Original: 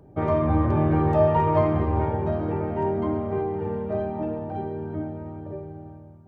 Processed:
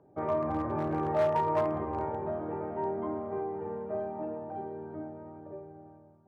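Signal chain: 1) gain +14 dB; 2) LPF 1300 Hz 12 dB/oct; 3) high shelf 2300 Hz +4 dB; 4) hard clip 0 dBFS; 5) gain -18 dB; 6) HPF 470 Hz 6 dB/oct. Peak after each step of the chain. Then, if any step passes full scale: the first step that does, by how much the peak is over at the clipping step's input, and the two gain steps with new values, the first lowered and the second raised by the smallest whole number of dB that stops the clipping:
+5.0, +5.0, +5.0, 0.0, -18.0, -16.5 dBFS; step 1, 5.0 dB; step 1 +9 dB, step 5 -13 dB

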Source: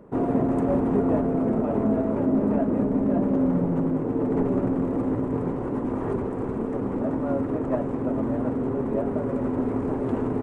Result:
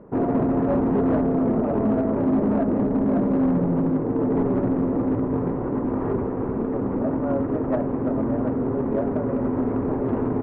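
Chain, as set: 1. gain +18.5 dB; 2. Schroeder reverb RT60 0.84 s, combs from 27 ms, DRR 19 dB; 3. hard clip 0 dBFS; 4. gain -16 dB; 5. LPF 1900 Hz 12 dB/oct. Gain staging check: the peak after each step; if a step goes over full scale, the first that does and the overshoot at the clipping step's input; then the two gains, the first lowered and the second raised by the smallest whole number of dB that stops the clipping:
+8.0, +8.0, 0.0, -16.0, -15.5 dBFS; step 1, 8.0 dB; step 1 +10.5 dB, step 4 -8 dB

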